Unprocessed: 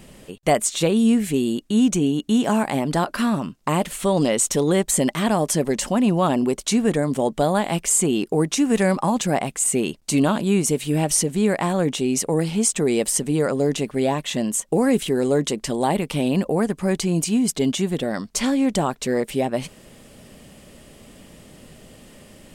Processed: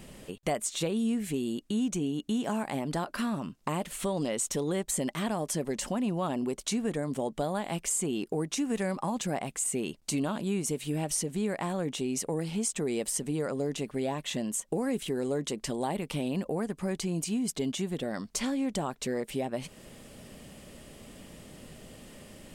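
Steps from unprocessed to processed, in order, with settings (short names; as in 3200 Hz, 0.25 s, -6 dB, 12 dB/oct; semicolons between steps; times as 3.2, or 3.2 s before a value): compressor 2:1, threshold -31 dBFS, peak gain reduction 10 dB; gain -3 dB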